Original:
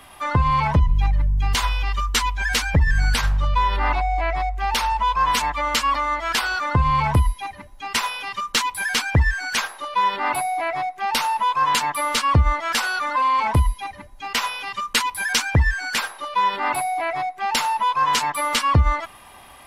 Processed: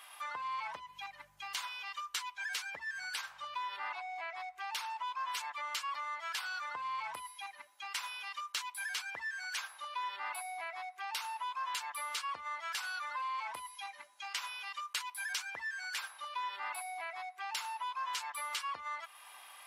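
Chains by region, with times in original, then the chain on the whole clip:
0:13.71–0:14.37: low-pass filter 8,500 Hz + high-shelf EQ 6,400 Hz +7.5 dB + double-tracking delay 19 ms −9 dB
whole clip: high-pass filter 1,100 Hz 12 dB per octave; notch filter 1,900 Hz, Q 21; downward compressor 2 to 1, threshold −39 dBFS; level −5.5 dB

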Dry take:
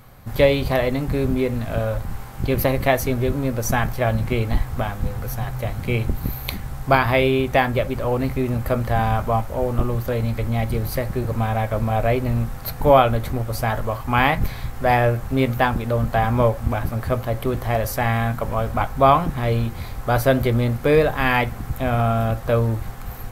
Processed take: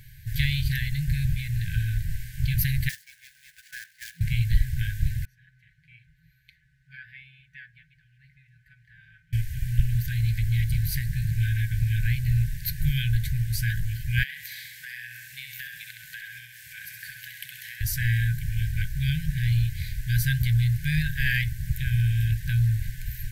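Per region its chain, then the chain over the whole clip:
0:02.89–0:04.21: running median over 15 samples + four-pole ladder high-pass 590 Hz, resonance 60% + floating-point word with a short mantissa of 2 bits
0:05.25–0:09.33: resonant band-pass 750 Hz, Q 6.2 + comb filter 5.3 ms, depth 61%
0:14.23–0:17.81: high-pass filter 740 Hz + downward compressor 3 to 1, threshold −30 dBFS + repeating echo 66 ms, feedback 56%, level −5.5 dB
whole clip: brick-wall band-stop 170–1,500 Hz; dynamic equaliser 2,300 Hz, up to −5 dB, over −40 dBFS, Q 1.3

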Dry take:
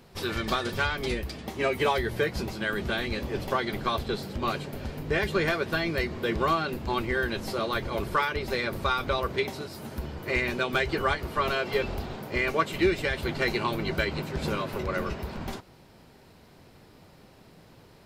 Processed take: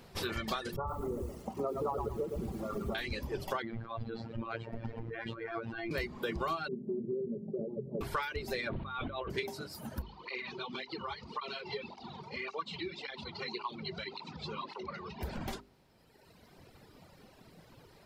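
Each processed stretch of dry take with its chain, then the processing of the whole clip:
0:00.76–0:02.95: linear-phase brick-wall low-pass 1,400 Hz + feedback echo at a low word length 113 ms, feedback 55%, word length 8 bits, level −3 dB
0:03.62–0:05.91: compressor whose output falls as the input rises −32 dBFS + low-pass filter 2,200 Hz + phases set to zero 114 Hz
0:06.68–0:08.01: elliptic band-pass filter 120–480 Hz, stop band 50 dB + comb filter 5 ms, depth 81%
0:08.69–0:09.30: Butterworth low-pass 3,800 Hz 48 dB per octave + compressor whose output falls as the input rises −34 dBFS
0:10.02–0:15.21: downward compressor 2.5 to 1, threshold −32 dBFS + loudspeaker in its box 110–5,400 Hz, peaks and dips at 120 Hz −7 dB, 300 Hz −6 dB, 610 Hz −10 dB, 960 Hz +7 dB, 1,600 Hz −10 dB, 4,100 Hz +7 dB + through-zero flanger with one copy inverted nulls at 1.8 Hz, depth 4.3 ms
whole clip: reverb reduction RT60 1.9 s; mains-hum notches 50/100/150/200/250/300/350/400 Hz; downward compressor 3 to 1, threshold −34 dBFS

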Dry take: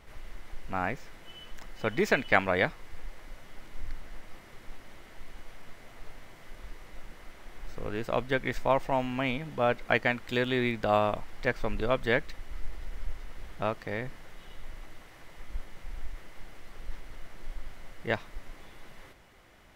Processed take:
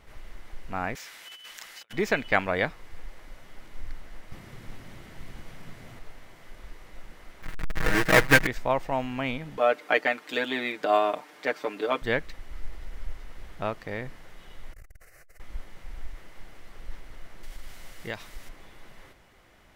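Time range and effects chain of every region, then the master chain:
0:00.95–0:01.93: high-pass filter 490 Hz 6 dB per octave + tilt shelving filter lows −9 dB, about 1,200 Hz + compressor whose output falls as the input rises −46 dBFS, ratio −0.5
0:04.32–0:05.99: parametric band 130 Hz +13 dB 2.2 octaves + one half of a high-frequency compander encoder only
0:07.42–0:08.47: each half-wave held at its own peak + parametric band 1,800 Hz +13 dB 0.97 octaves + comb filter 6.3 ms, depth 87%
0:09.57–0:12.02: high-pass filter 240 Hz 24 dB per octave + comb filter 6.7 ms, depth 81%
0:14.73–0:15.40: high-shelf EQ 3,500 Hz +10 dB + phaser with its sweep stopped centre 930 Hz, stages 6 + saturating transformer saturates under 110 Hz
0:17.43–0:18.49: high-shelf EQ 2,900 Hz +11.5 dB + downward compressor 2.5 to 1, threshold −32 dBFS
whole clip: no processing

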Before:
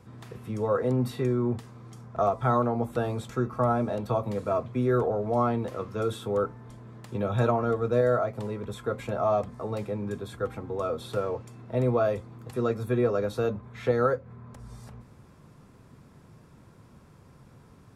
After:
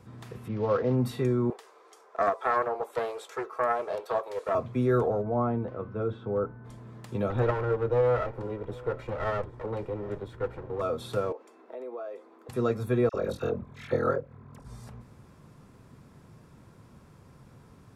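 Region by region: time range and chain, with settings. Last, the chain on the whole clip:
0:00.48–0:00.95: variable-slope delta modulation 32 kbit/s + low-pass filter 2,500 Hz
0:01.50–0:04.55: elliptic high-pass filter 400 Hz, stop band 60 dB + highs frequency-modulated by the lows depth 0.26 ms
0:05.21–0:06.64: steady tone 1,500 Hz −54 dBFS + head-to-tape spacing loss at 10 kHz 44 dB
0:07.30–0:10.81: lower of the sound and its delayed copy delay 2.1 ms + low-pass filter 1,400 Hz 6 dB per octave + single-tap delay 769 ms −22 dB
0:11.32–0:12.49: Butterworth high-pass 310 Hz + high-shelf EQ 2,700 Hz −10.5 dB + downward compressor 3 to 1, threshold −39 dBFS
0:13.09–0:14.66: ring modulation 21 Hz + all-pass dispersion lows, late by 49 ms, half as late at 1,400 Hz
whole clip: no processing

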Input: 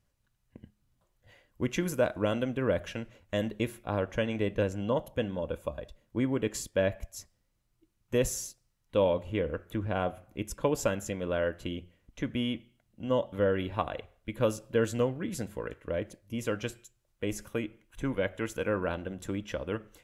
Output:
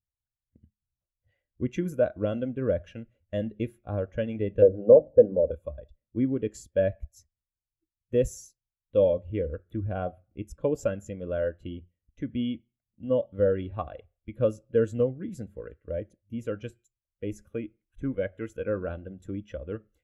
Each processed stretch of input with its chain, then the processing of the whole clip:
0:04.62–0:05.51: low-pass filter 1,300 Hz + parametric band 470 Hz +10.5 dB 1.2 octaves + mains-hum notches 50/100/150/200/250/300 Hz
whole clip: parametric band 71 Hz +6.5 dB 0.7 octaves; notch filter 960 Hz, Q 5.8; every bin expanded away from the loudest bin 1.5 to 1; level +6 dB

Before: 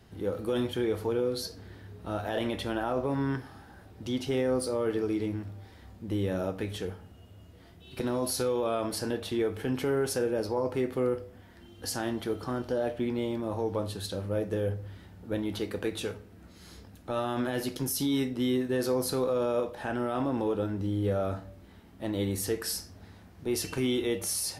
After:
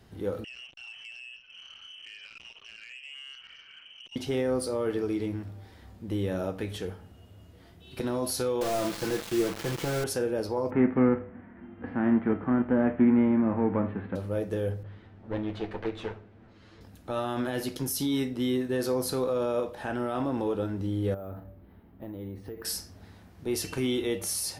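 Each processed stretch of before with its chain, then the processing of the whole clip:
0:00.44–0:04.16: downward compressor 5 to 1, threshold −43 dBFS + voice inversion scrambler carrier 3,100 Hz + saturating transformer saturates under 2,500 Hz
0:08.61–0:10.04: linear delta modulator 32 kbit/s, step −45.5 dBFS + comb filter 5.9 ms, depth 75% + bit-depth reduction 6 bits, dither none
0:10.69–0:14.15: spectral envelope flattened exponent 0.6 + Butterworth low-pass 2,100 Hz + parametric band 230 Hz +13.5 dB 0.8 octaves
0:14.83–0:16.81: lower of the sound and its delayed copy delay 9.1 ms + low-pass filter 2,800 Hz
0:21.14–0:22.65: downward compressor 10 to 1, threshold −33 dBFS + head-to-tape spacing loss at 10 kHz 39 dB + bad sample-rate conversion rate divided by 3×, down filtered, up hold
whole clip: no processing

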